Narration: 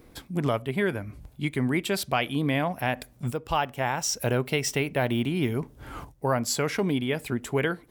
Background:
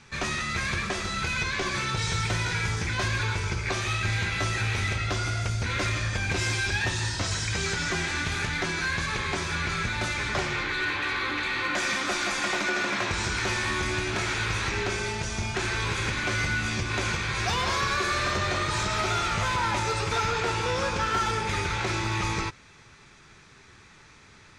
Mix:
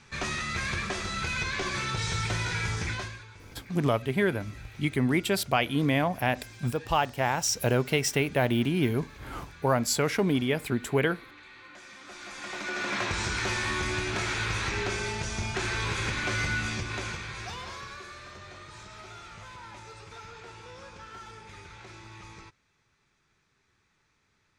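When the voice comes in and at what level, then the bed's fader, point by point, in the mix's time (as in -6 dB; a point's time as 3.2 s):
3.40 s, +0.5 dB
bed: 2.91 s -2.5 dB
3.26 s -21.5 dB
11.91 s -21.5 dB
12.96 s -2 dB
16.59 s -2 dB
18.21 s -19 dB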